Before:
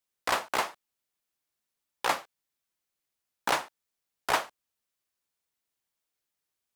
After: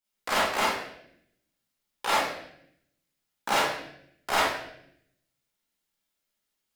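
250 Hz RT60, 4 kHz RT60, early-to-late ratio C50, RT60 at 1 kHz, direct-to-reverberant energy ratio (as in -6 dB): 1.1 s, 0.70 s, -2.0 dB, 0.60 s, -9.0 dB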